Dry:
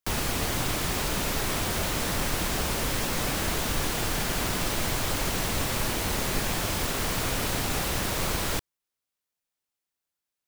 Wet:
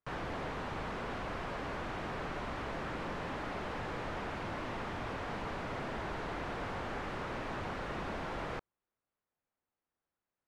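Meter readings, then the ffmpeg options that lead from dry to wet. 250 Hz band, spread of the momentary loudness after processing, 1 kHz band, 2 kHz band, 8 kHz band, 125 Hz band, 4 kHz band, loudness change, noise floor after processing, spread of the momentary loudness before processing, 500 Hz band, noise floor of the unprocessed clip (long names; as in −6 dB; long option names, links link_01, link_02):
−9.5 dB, 0 LU, −6.5 dB, −10.0 dB, −30.0 dB, −12.0 dB, −18.5 dB, −12.0 dB, below −85 dBFS, 0 LU, −7.5 dB, below −85 dBFS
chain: -af "aeval=exprs='0.0266*(abs(mod(val(0)/0.0266+3,4)-2)-1)':channel_layout=same,lowpass=1400,volume=4.5dB"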